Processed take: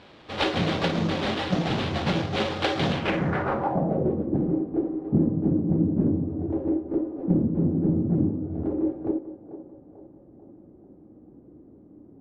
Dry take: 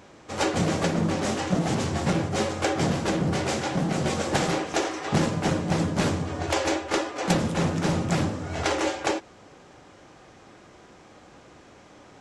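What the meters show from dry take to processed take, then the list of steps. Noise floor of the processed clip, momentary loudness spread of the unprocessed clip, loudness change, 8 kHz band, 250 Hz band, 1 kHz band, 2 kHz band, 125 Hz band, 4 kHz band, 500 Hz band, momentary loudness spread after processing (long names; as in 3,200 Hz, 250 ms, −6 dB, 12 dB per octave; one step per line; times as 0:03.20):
−52 dBFS, 3 LU, +0.5 dB, below −15 dB, +3.0 dB, −3.0 dB, −3.0 dB, +0.5 dB, −1.0 dB, −1.0 dB, 6 LU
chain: feedback echo with a band-pass in the loop 442 ms, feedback 58%, band-pass 700 Hz, level −11 dB
sample-rate reduction 6,400 Hz, jitter 20%
low-pass filter sweep 3,600 Hz → 300 Hz, 0:02.92–0:04.26
level −1 dB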